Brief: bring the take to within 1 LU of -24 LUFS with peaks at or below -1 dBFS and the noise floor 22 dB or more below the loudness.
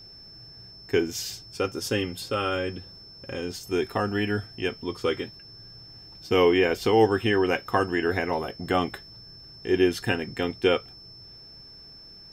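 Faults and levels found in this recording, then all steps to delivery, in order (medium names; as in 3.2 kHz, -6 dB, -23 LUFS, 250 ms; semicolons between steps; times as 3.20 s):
steady tone 5.3 kHz; tone level -45 dBFS; loudness -26.0 LUFS; peak level -7.0 dBFS; loudness target -24.0 LUFS
-> band-stop 5.3 kHz, Q 30; trim +2 dB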